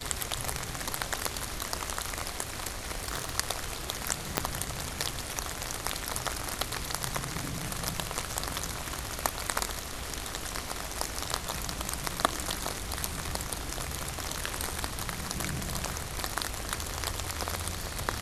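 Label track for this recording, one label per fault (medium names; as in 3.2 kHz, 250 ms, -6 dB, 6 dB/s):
2.950000	3.380000	clipped -25.5 dBFS
4.380000	4.380000	pop -6 dBFS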